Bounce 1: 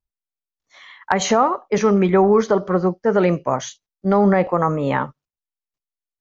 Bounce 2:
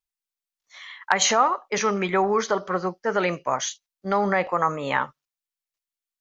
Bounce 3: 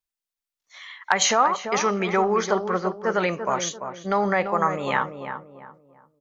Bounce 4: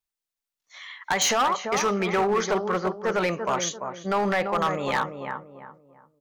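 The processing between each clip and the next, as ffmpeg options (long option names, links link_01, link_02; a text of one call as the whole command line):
ffmpeg -i in.wav -af "tiltshelf=frequency=710:gain=-8.5,volume=-4.5dB" out.wav
ffmpeg -i in.wav -filter_complex "[0:a]asplit=2[link_01][link_02];[link_02]adelay=341,lowpass=frequency=1300:poles=1,volume=-7dB,asplit=2[link_03][link_04];[link_04]adelay=341,lowpass=frequency=1300:poles=1,volume=0.35,asplit=2[link_05][link_06];[link_06]adelay=341,lowpass=frequency=1300:poles=1,volume=0.35,asplit=2[link_07][link_08];[link_08]adelay=341,lowpass=frequency=1300:poles=1,volume=0.35[link_09];[link_01][link_03][link_05][link_07][link_09]amix=inputs=5:normalize=0" out.wav
ffmpeg -i in.wav -af "volume=18dB,asoftclip=hard,volume=-18dB" out.wav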